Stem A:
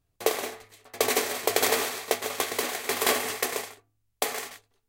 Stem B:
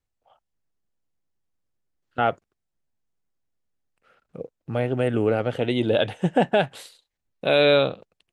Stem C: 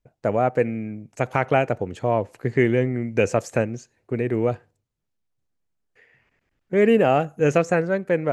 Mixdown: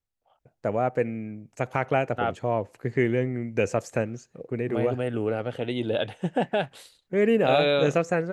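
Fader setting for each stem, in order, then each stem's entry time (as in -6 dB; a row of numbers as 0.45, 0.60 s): off, -5.5 dB, -4.5 dB; off, 0.00 s, 0.40 s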